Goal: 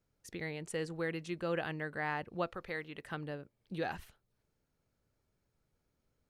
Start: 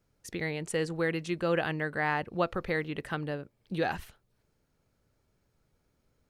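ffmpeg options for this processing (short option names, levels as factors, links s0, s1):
-filter_complex "[0:a]asettb=1/sr,asplit=3[s0][s1][s2];[s0]atrim=end=2.504[s3];[s1]atrim=start=2.5:end=3.08,asetpts=PTS-STARTPTS,afade=t=in:d=0.004:c=qsin,afade=t=out:st=0.576:d=0.004:c=qsin,lowshelf=f=480:g=-7[s4];[s2]atrim=start=3.076[s5];[s3][s4]acrossfade=d=0.004:c1=hsin:c2=qsin[s6];[s6][s5]acrossfade=d=0.004:c1=qsin:c2=hsin,volume=0.447"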